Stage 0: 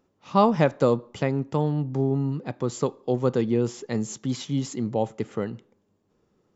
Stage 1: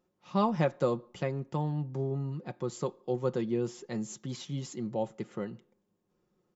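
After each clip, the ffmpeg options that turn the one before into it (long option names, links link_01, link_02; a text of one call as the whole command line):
ffmpeg -i in.wav -af "aecho=1:1:5.6:0.49,volume=-8.5dB" out.wav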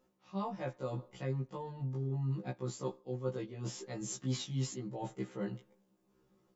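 ffmpeg -i in.wav -af "areverse,acompressor=threshold=-37dB:ratio=16,areverse,afftfilt=real='re*1.73*eq(mod(b,3),0)':imag='im*1.73*eq(mod(b,3),0)':win_size=2048:overlap=0.75,volume=6dB" out.wav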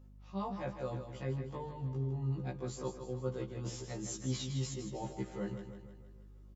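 ffmpeg -i in.wav -af "aeval=exprs='val(0)+0.002*(sin(2*PI*50*n/s)+sin(2*PI*2*50*n/s)/2+sin(2*PI*3*50*n/s)/3+sin(2*PI*4*50*n/s)/4+sin(2*PI*5*50*n/s)/5)':channel_layout=same,aecho=1:1:158|316|474|632|790|948:0.376|0.199|0.106|0.056|0.0297|0.0157,volume=-1dB" out.wav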